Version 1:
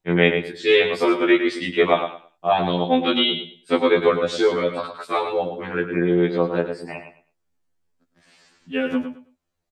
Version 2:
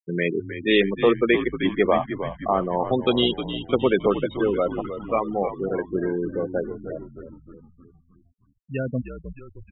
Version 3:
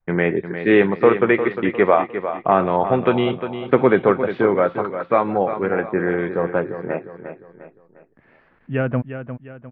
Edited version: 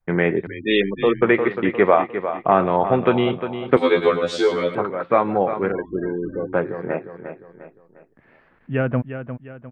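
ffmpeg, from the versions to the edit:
-filter_complex "[1:a]asplit=2[a][b];[2:a]asplit=4[c][d][e][f];[c]atrim=end=0.472[g];[a]atrim=start=0.468:end=1.222[h];[d]atrim=start=1.218:end=3.772[i];[0:a]atrim=start=3.768:end=4.752[j];[e]atrim=start=4.748:end=5.722[k];[b]atrim=start=5.718:end=6.532[l];[f]atrim=start=6.528[m];[g][h]acrossfade=d=0.004:c1=hsin:c2=hsin[n];[n][i]acrossfade=d=0.004:c1=hsin:c2=hsin[o];[o][j]acrossfade=d=0.004:c1=hsin:c2=hsin[p];[p][k]acrossfade=d=0.004:c1=hsin:c2=hsin[q];[q][l]acrossfade=d=0.004:c1=hsin:c2=hsin[r];[r][m]acrossfade=d=0.004:c1=hsin:c2=hsin"

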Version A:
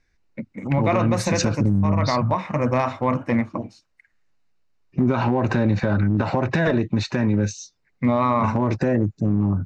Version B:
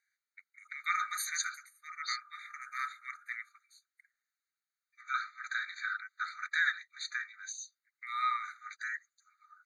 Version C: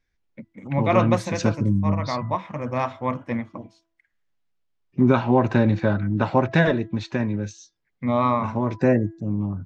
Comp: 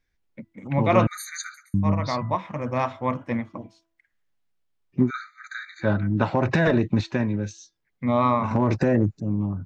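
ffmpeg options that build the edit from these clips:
-filter_complex "[1:a]asplit=2[a][b];[0:a]asplit=2[c][d];[2:a]asplit=5[e][f][g][h][i];[e]atrim=end=1.072[j];[a]atrim=start=1.068:end=1.742[k];[f]atrim=start=1.738:end=5.11[l];[b]atrim=start=5.01:end=5.89[m];[g]atrim=start=5.79:end=6.352[n];[c]atrim=start=6.348:end=7.012[o];[h]atrim=start=7.008:end=8.512[p];[d]atrim=start=8.508:end=9.202[q];[i]atrim=start=9.198[r];[j][k]acrossfade=d=0.004:c1=hsin:c2=hsin[s];[s][l]acrossfade=d=0.004:c1=hsin:c2=hsin[t];[t][m]acrossfade=d=0.1:c1=tri:c2=tri[u];[u][n]acrossfade=d=0.1:c1=tri:c2=tri[v];[v][o]acrossfade=d=0.004:c1=hsin:c2=hsin[w];[w][p]acrossfade=d=0.004:c1=hsin:c2=hsin[x];[x][q]acrossfade=d=0.004:c1=hsin:c2=hsin[y];[y][r]acrossfade=d=0.004:c1=hsin:c2=hsin"

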